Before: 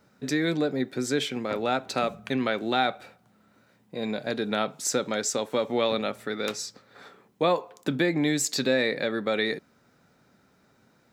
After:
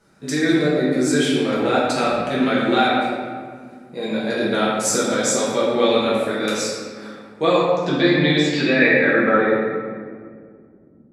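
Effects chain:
low-pass filter sweep 10,000 Hz → 260 Hz, 0:07.21–0:11.11
convolution reverb RT60 1.9 s, pre-delay 5 ms, DRR −8.5 dB
level −1 dB

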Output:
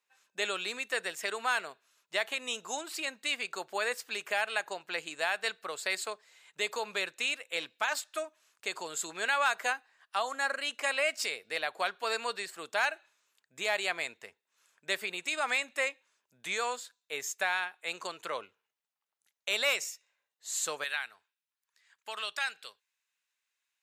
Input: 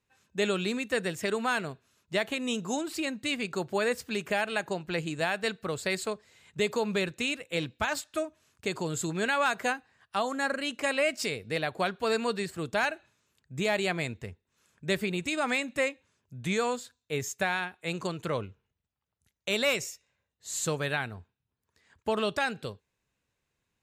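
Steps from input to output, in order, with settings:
high-pass filter 720 Hz 12 dB per octave, from 0:20.84 1,500 Hz

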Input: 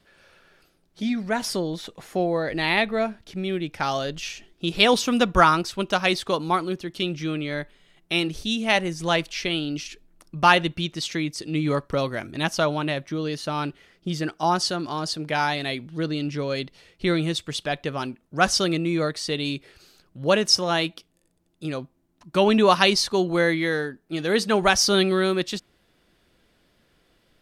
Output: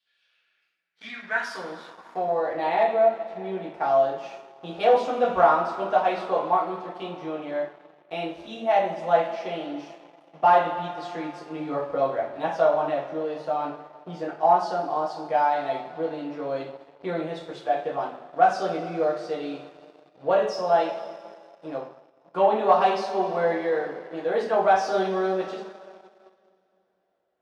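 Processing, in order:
coupled-rooms reverb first 0.43 s, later 3.4 s, from −18 dB, DRR −4.5 dB
leveller curve on the samples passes 2
band-pass filter sweep 3,400 Hz → 700 Hz, 0:00.12–0:02.73
level −7 dB

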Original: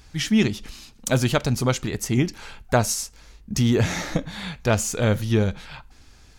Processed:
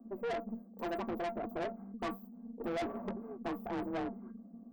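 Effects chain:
frequency shifter +130 Hz
inverse Chebyshev band-stop filter 2,500–5,900 Hz, stop band 80 dB
tuned comb filter 170 Hz, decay 0.18 s, harmonics odd, mix 90%
tube saturation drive 40 dB, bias 0.45
wrong playback speed 33 rpm record played at 45 rpm
level +6.5 dB

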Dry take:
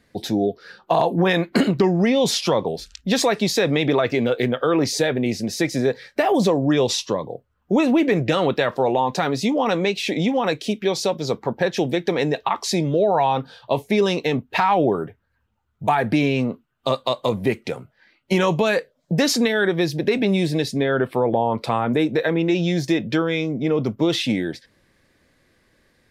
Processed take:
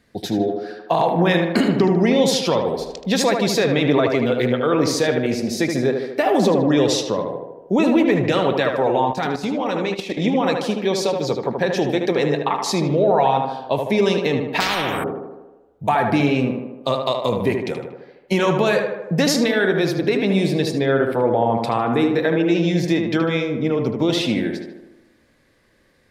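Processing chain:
tape delay 76 ms, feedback 67%, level −3.5 dB, low-pass 2,200 Hz
0:09.11–0:10.22: output level in coarse steps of 11 dB
0:14.60–0:15.04: every bin compressed towards the loudest bin 4 to 1

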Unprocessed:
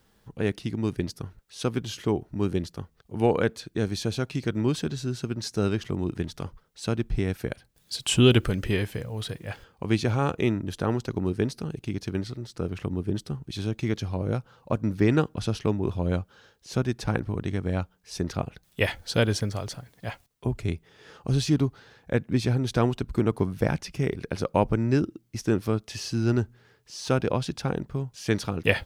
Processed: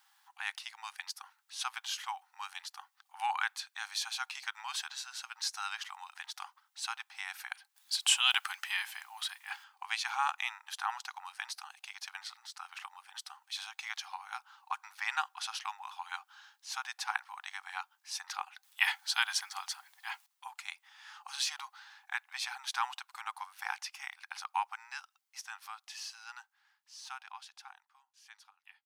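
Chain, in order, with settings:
fade-out on the ending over 6.70 s
linear-phase brick-wall high-pass 750 Hz

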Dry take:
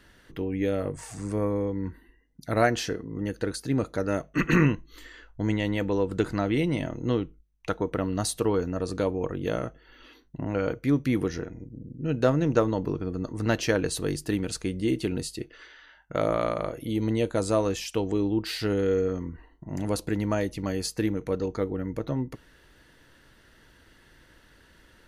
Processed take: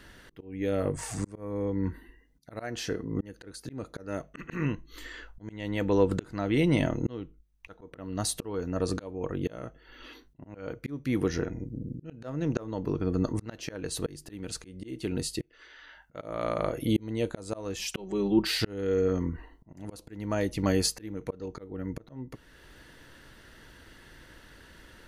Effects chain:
0:17.79–0:18.47: comb filter 5.3 ms, depth 94%
volume swells 622 ms
level +4.5 dB

